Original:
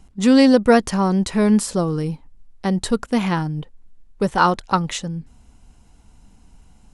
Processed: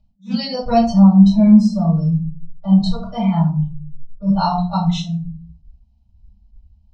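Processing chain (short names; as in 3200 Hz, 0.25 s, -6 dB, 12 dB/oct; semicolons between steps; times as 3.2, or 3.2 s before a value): spectral noise reduction 25 dB; EQ curve 120 Hz 0 dB, 230 Hz +13 dB, 350 Hz -26 dB, 670 Hz +4 dB, 1600 Hz -16 dB, 2500 Hz -1 dB, 4600 Hz +7 dB, 9900 Hz -28 dB; in parallel at +1.5 dB: compressor, threshold -27 dBFS, peak gain reduction 23 dB; on the sum: reverb RT60 0.40 s, pre-delay 3 ms, DRR -8 dB; attack slew limiter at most 270 dB/s; gain -12.5 dB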